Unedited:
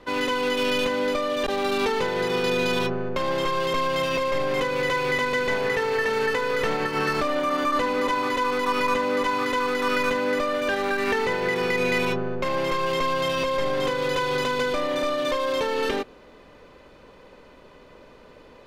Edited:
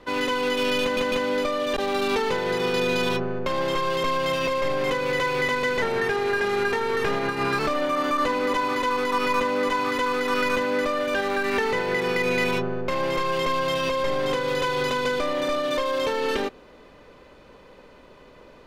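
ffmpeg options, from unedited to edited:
-filter_complex "[0:a]asplit=5[s0][s1][s2][s3][s4];[s0]atrim=end=0.972[s5];[s1]atrim=start=0.818:end=0.972[s6];[s2]atrim=start=0.818:end=5.524[s7];[s3]atrim=start=5.52:end=7.13,asetpts=PTS-STARTPTS,asetrate=40131,aresample=44100,atrim=end_sample=78023,asetpts=PTS-STARTPTS[s8];[s4]atrim=start=7.126[s9];[s5][s6]acrossfade=d=0.004:c1=hsin:c2=hsin[s10];[s10][s7]acrossfade=d=0.004:c1=hsin:c2=hsin[s11];[s11][s8]acrossfade=d=0.004:c1=hsin:c2=hsin[s12];[s12][s9]acrossfade=d=0.004:c1=hsin:c2=hsin"

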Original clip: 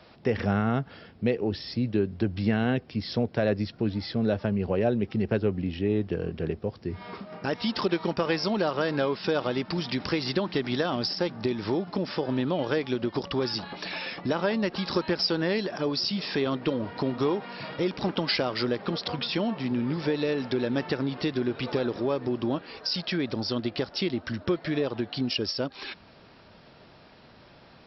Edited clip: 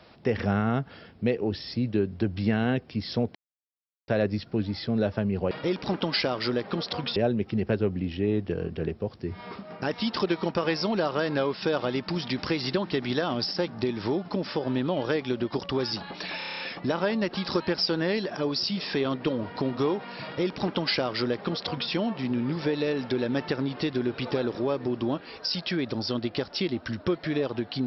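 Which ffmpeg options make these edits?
-filter_complex "[0:a]asplit=11[s0][s1][s2][s3][s4][s5][s6][s7][s8][s9][s10];[s0]atrim=end=3.35,asetpts=PTS-STARTPTS,afade=t=out:st=3.346:d=0.004:c=hsin,apad=pad_dur=0.73[s11];[s1]atrim=start=3.35:end=4.782,asetpts=PTS-STARTPTS,afade=t=in:d=0.004:c=hsin[s12];[s2]atrim=start=17.658:end=19.312[s13];[s3]atrim=start=4.778:end=14.032[s14];[s4]atrim=start=13.998:end=14.032[s15];[s5]atrim=start=13.998:end=14.032[s16];[s6]atrim=start=13.998:end=14.032[s17];[s7]atrim=start=13.998:end=14.032[s18];[s8]atrim=start=13.998:end=14.032[s19];[s9]atrim=start=13.998:end=14.032[s20];[s10]atrim=start=13.998[s21];[s11][s12]concat=n=2:v=0:a=1[s22];[s22][s13]acrossfade=d=0.004:c1=hsin:c2=hsin[s23];[s23][s14]acrossfade=d=0.004:c1=hsin:c2=hsin[s24];[s24][s15]acrossfade=d=0.004:c1=hsin:c2=hsin[s25];[s25][s16]acrossfade=d=0.004:c1=hsin:c2=hsin[s26];[s26][s17]acrossfade=d=0.004:c1=hsin:c2=hsin[s27];[s27][s18]acrossfade=d=0.004:c1=hsin:c2=hsin[s28];[s28][s19]acrossfade=d=0.004:c1=hsin:c2=hsin[s29];[s29][s20]acrossfade=d=0.004:c1=hsin:c2=hsin[s30];[s30][s21]acrossfade=d=0.004:c1=hsin:c2=hsin"

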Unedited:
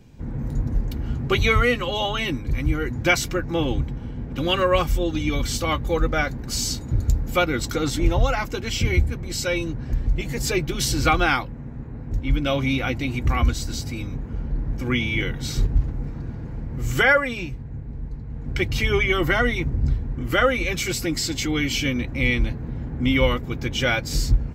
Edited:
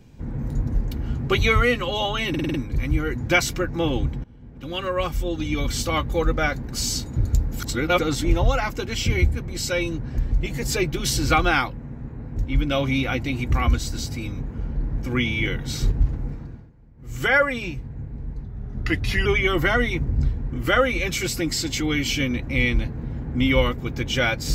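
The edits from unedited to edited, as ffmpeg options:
-filter_complex "[0:a]asplit=13[s0][s1][s2][s3][s4][s5][s6][s7][s8][s9][s10][s11][s12];[s0]atrim=end=2.342[s13];[s1]atrim=start=2.288:end=2.342[s14];[s2]atrim=start=2.288:end=2.342[s15];[s3]atrim=start=2.288:end=2.342[s16];[s4]atrim=start=2.288:end=2.342[s17];[s5]atrim=start=2.288:end=3.99,asetpts=PTS-STARTPTS,afade=t=out:st=1.698:d=0.004:c=hsin:silence=0.125893[s18];[s6]atrim=start=3.99:end=7.352,asetpts=PTS-STARTPTS,afade=t=in:d=1.54:silence=0.125893[s19];[s7]atrim=start=7.348:end=7.742,asetpts=PTS-STARTPTS,areverse[s20];[s8]atrim=start=7.738:end=16.46,asetpts=PTS-STARTPTS,afade=t=out:st=8.262:d=0.46:silence=0.0944061[s21];[s9]atrim=start=16.46:end=16.72,asetpts=PTS-STARTPTS,volume=0.0944[s22];[s10]atrim=start=16.72:end=18.194,asetpts=PTS-STARTPTS,afade=t=in:d=0.46:silence=0.0944061[s23];[s11]atrim=start=18.19:end=18.91,asetpts=PTS-STARTPTS,asetrate=38808,aresample=44100[s24];[s12]atrim=start=18.906[s25];[s13][s14]acrossfade=d=0.004:c1=hsin:c2=hsin[s26];[s26][s15]acrossfade=d=0.004:c1=hsin:c2=hsin[s27];[s27][s16]acrossfade=d=0.004:c1=hsin:c2=hsin[s28];[s28][s17]acrossfade=d=0.004:c1=hsin:c2=hsin[s29];[s18][s19]concat=n=2:v=0:a=1[s30];[s29][s30]acrossfade=d=0.004:c1=hsin:c2=hsin[s31];[s31][s20]acrossfade=d=0.004:c1=hsin:c2=hsin[s32];[s21][s22][s23]concat=n=3:v=0:a=1[s33];[s32][s33]acrossfade=d=0.004:c1=hsin:c2=hsin[s34];[s34][s24]acrossfade=d=0.004:c1=hsin:c2=hsin[s35];[s35][s25]acrossfade=d=0.004:c1=hsin:c2=hsin"

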